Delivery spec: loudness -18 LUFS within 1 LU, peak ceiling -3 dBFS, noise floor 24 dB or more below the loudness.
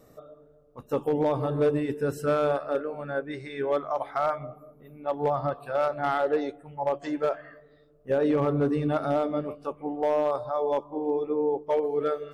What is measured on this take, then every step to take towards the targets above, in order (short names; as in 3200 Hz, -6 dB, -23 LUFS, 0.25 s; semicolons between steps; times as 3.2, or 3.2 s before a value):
clipped 0.6%; flat tops at -17.5 dBFS; loudness -28.0 LUFS; peak -17.5 dBFS; loudness target -18.0 LUFS
-> clip repair -17.5 dBFS; gain +10 dB